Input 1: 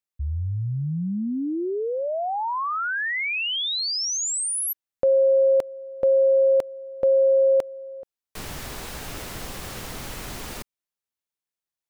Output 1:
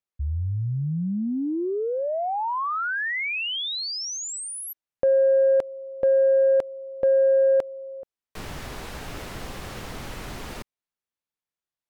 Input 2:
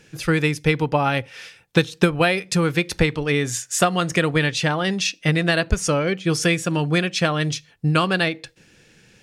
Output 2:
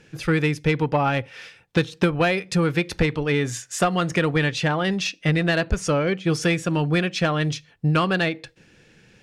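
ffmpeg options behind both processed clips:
-af "asoftclip=type=tanh:threshold=-11dB,aemphasis=mode=reproduction:type=cd"

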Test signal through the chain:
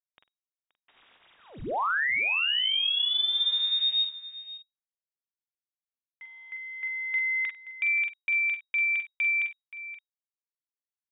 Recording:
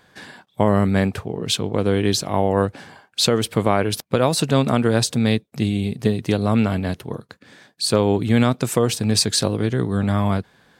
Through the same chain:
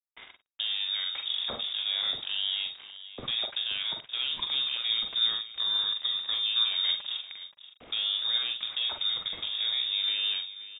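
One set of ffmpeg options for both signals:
-filter_complex "[0:a]alimiter=limit=-15dB:level=0:latency=1:release=239,aeval=exprs='val(0)*gte(abs(val(0)),0.0188)':c=same,asplit=2[a][b];[b]adelay=44,volume=-6dB[c];[a][c]amix=inputs=2:normalize=0,aecho=1:1:53|526:0.211|0.178,lowpass=f=3.2k:t=q:w=0.5098,lowpass=f=3.2k:t=q:w=0.6013,lowpass=f=3.2k:t=q:w=0.9,lowpass=f=3.2k:t=q:w=2.563,afreqshift=-3800,volume=-5dB"

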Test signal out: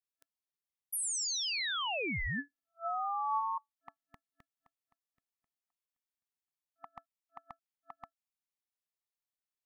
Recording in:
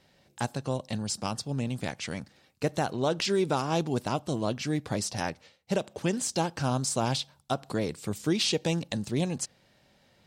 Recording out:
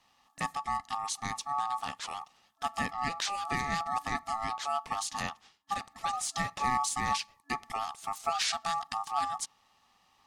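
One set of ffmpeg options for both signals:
-af "adynamicequalizer=threshold=0.00316:dfrequency=130:dqfactor=7.1:tfrequency=130:tqfactor=7.1:attack=5:release=100:ratio=0.375:range=2.5:mode=boostabove:tftype=bell,afftfilt=real='re*(1-between(b*sr/4096,330,720))':imag='im*(1-between(b*sr/4096,330,720))':win_size=4096:overlap=0.75,aeval=exprs='val(0)*sin(2*PI*1000*n/s)':c=same"

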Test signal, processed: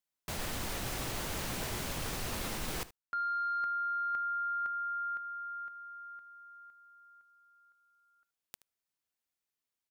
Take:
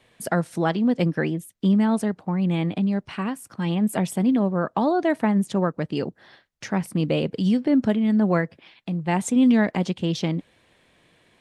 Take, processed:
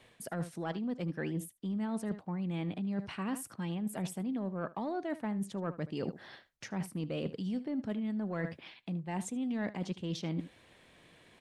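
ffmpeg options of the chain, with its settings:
-af "acontrast=67,aecho=1:1:76:0.119,areverse,acompressor=threshold=-25dB:ratio=16,areverse,volume=-7.5dB"

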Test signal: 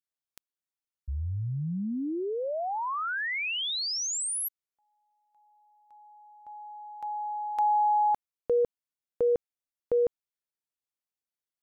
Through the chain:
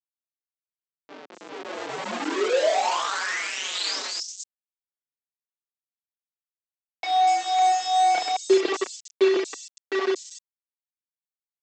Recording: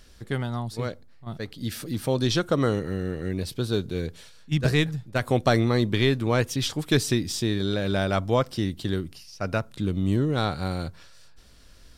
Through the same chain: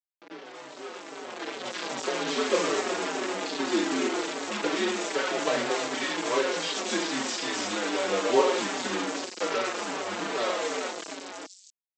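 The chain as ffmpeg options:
-filter_complex "[0:a]asplit=2[a][b];[b]adelay=31,volume=-10.5dB[c];[a][c]amix=inputs=2:normalize=0,asplit=2[d][e];[e]aecho=0:1:30|72|130.8|213.1|328.4:0.631|0.398|0.251|0.158|0.1[f];[d][f]amix=inputs=2:normalize=0,afreqshift=-94,tiltshelf=f=1.1k:g=5,agate=range=-9dB:threshold=-36dB:ratio=16:release=85:detection=peak,acompressor=threshold=-38dB:ratio=2:attack=0.2:release=109:knee=1:detection=peak,aphaser=in_gain=1:out_gain=1:delay=1.9:decay=0.39:speed=0.23:type=sinusoidal,aresample=16000,acrusher=bits=5:mix=0:aa=0.000001,aresample=44100,dynaudnorm=f=230:g=13:m=16.5dB,highpass=f=320:w=0.5412,highpass=f=320:w=1.3066,acrossover=split=5100[g][h];[h]adelay=240[i];[g][i]amix=inputs=2:normalize=0,asplit=2[j][k];[k]adelay=4.8,afreqshift=-2.5[l];[j][l]amix=inputs=2:normalize=1,volume=-2.5dB"

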